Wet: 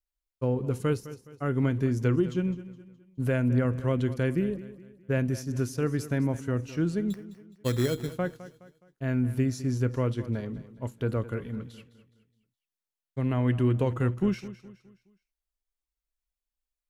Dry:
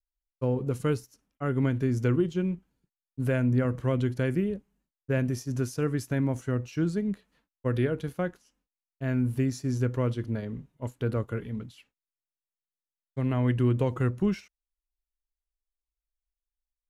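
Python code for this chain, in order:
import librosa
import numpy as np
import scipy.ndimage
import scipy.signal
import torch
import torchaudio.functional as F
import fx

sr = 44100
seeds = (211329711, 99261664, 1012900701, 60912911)

y = fx.sample_hold(x, sr, seeds[0], rate_hz=3700.0, jitter_pct=0, at=(7.1, 8.12))
y = fx.echo_feedback(y, sr, ms=209, feedback_pct=40, wet_db=-15.5)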